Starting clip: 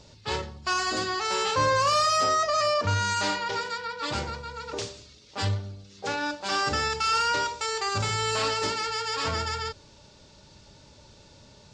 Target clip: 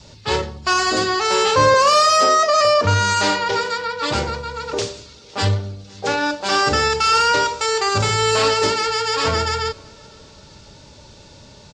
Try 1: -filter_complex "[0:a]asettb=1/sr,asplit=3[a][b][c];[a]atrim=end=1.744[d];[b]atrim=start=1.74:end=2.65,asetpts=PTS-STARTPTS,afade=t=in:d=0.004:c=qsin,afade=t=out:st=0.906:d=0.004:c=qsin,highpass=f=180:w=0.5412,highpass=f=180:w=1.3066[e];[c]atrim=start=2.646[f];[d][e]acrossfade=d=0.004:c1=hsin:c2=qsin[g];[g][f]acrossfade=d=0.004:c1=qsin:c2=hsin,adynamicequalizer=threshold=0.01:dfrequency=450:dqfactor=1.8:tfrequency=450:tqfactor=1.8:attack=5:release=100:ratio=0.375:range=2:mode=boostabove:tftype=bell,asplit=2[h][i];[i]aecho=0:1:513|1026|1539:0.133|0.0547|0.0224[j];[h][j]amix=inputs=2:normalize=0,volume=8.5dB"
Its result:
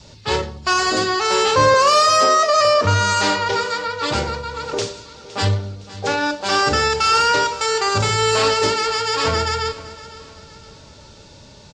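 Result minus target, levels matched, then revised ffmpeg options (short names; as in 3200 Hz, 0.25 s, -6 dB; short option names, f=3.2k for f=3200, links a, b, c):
echo-to-direct +10.5 dB
-filter_complex "[0:a]asettb=1/sr,asplit=3[a][b][c];[a]atrim=end=1.744[d];[b]atrim=start=1.74:end=2.65,asetpts=PTS-STARTPTS,afade=t=in:d=0.004:c=qsin,afade=t=out:st=0.906:d=0.004:c=qsin,highpass=f=180:w=0.5412,highpass=f=180:w=1.3066[e];[c]atrim=start=2.646[f];[d][e]acrossfade=d=0.004:c1=hsin:c2=qsin[g];[g][f]acrossfade=d=0.004:c1=qsin:c2=hsin,adynamicequalizer=threshold=0.01:dfrequency=450:dqfactor=1.8:tfrequency=450:tqfactor=1.8:attack=5:release=100:ratio=0.375:range=2:mode=boostabove:tftype=bell,asplit=2[h][i];[i]aecho=0:1:513|1026:0.0398|0.0163[j];[h][j]amix=inputs=2:normalize=0,volume=8.5dB"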